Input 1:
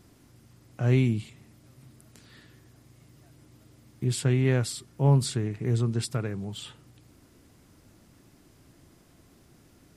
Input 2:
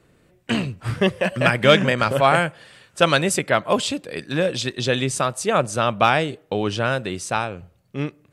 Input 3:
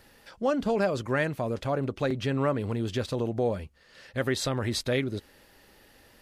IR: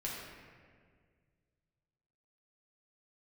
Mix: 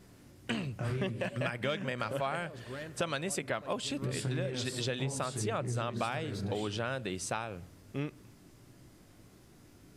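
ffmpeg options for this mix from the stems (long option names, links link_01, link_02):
-filter_complex "[0:a]acompressor=threshold=-29dB:ratio=2.5,flanger=delay=15.5:depth=5.7:speed=1.6,volume=-0.5dB,asplit=2[link_01][link_02];[link_02]volume=-6dB[link_03];[1:a]volume=-6.5dB[link_04];[2:a]asoftclip=type=hard:threshold=-22.5dB,adelay=1600,volume=-16dB,asplit=2[link_05][link_06];[link_06]volume=-12.5dB[link_07];[3:a]atrim=start_sample=2205[link_08];[link_03][link_07]amix=inputs=2:normalize=0[link_09];[link_09][link_08]afir=irnorm=-1:irlink=0[link_10];[link_01][link_04][link_05][link_10]amix=inputs=4:normalize=0,acompressor=threshold=-31dB:ratio=6"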